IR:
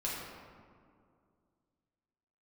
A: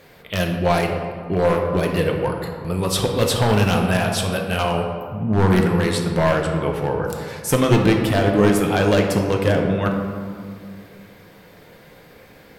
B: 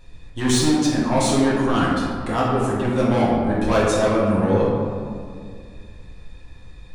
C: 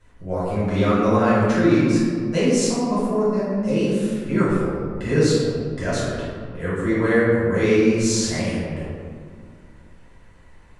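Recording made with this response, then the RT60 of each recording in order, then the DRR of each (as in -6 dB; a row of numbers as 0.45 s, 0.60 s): B; 2.3 s, 2.2 s, 2.2 s; 1.5 dB, -6.5 dB, -12.0 dB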